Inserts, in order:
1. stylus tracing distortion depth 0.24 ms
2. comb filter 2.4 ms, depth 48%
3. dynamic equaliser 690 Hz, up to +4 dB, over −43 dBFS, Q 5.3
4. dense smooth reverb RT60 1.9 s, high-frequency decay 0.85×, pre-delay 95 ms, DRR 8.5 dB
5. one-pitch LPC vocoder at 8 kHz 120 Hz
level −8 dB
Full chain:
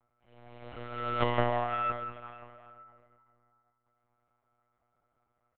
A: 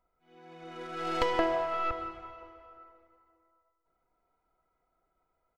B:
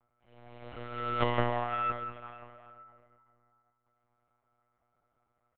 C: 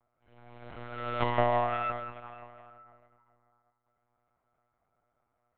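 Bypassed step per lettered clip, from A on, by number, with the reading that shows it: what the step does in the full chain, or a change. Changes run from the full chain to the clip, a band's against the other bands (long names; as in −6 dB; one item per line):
5, 125 Hz band −13.5 dB
3, change in momentary loudness spread +1 LU
2, change in momentary loudness spread +1 LU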